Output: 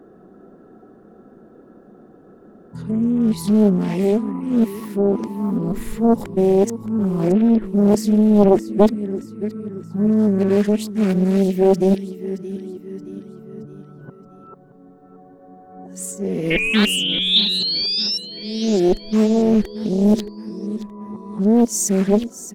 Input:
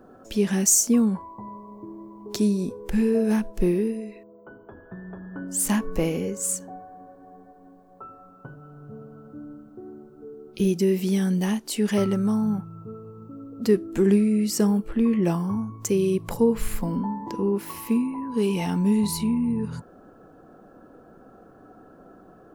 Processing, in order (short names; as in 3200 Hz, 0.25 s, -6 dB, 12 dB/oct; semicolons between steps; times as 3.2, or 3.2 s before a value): whole clip reversed; painted sound rise, 16.5–18.18, 2300–5500 Hz -19 dBFS; small resonant body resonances 210/370/1900/3600 Hz, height 10 dB, ringing for 30 ms; on a send: feedback echo 0.623 s, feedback 46%, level -14 dB; on the sum: Doppler distortion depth 0.77 ms; gain -2.5 dB